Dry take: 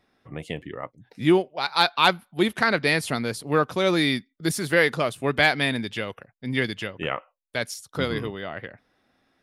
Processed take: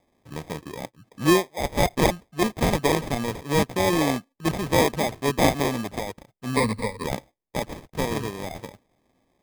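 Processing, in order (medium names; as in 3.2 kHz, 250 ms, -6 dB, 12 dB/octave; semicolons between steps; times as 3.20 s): 2.04–2.62 s: self-modulated delay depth 0.67 ms; sample-and-hold 31×; 6.56–7.04 s: rippled EQ curve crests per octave 0.94, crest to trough 17 dB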